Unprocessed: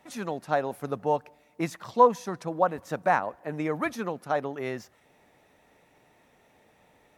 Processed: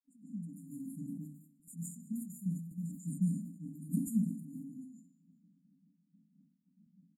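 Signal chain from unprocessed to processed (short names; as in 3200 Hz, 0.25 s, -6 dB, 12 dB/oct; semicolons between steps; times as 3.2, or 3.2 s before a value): gate with hold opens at -52 dBFS; low-pass opened by the level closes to 990 Hz, open at -24.5 dBFS; elliptic high-pass 170 Hz; high shelf 6000 Hz +10.5 dB; comb 6.1 ms, depth 73%; 0.97–3.02 compressor 1.5:1, threshold -36 dBFS, peak gain reduction 10 dB; step gate ".x...x.xx.xx.x" 188 bpm -12 dB; brick-wall FIR band-stop 270–6900 Hz; feedback echo 0.202 s, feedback 36%, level -19.5 dB; reverb RT60 0.45 s, pre-delay 0.141 s, DRR -5 dB; sustainer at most 84 dB/s; gain -3 dB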